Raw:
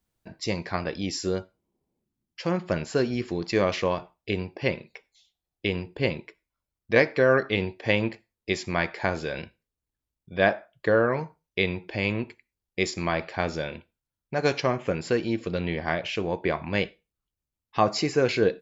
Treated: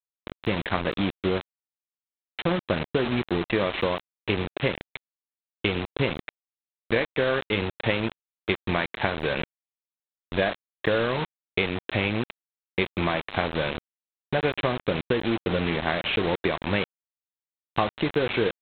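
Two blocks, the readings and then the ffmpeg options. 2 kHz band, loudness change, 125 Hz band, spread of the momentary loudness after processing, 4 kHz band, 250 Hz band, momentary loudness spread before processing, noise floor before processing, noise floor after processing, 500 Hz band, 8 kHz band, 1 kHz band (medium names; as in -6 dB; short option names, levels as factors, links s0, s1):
+0.5 dB, 0.0 dB, +1.0 dB, 7 LU, +3.0 dB, +1.0 dB, 11 LU, under -85 dBFS, under -85 dBFS, -1.5 dB, no reading, +0.5 dB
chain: -af "acompressor=threshold=0.0398:ratio=8,aresample=8000,acrusher=bits=5:mix=0:aa=0.000001,aresample=44100,volume=2.24"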